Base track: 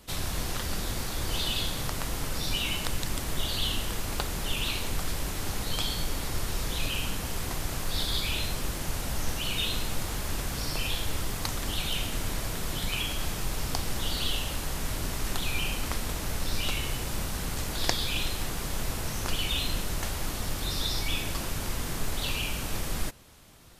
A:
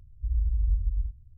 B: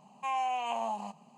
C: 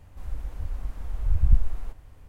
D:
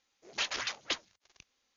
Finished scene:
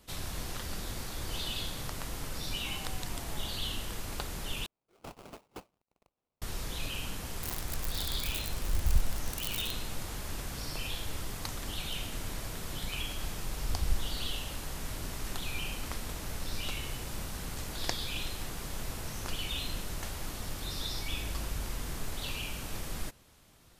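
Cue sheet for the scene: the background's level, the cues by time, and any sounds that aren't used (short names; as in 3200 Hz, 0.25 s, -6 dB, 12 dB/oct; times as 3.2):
base track -6.5 dB
2.43 add B -11.5 dB + compressor, threshold -37 dBFS
4.66 replace with D -12.5 dB + sample-rate reducer 1800 Hz, jitter 20%
7.43 add C -8.5 dB + switching spikes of -13 dBFS
12.39 add C -12.5 dB
20.88 add A -9 dB + compressor, threshold -28 dBFS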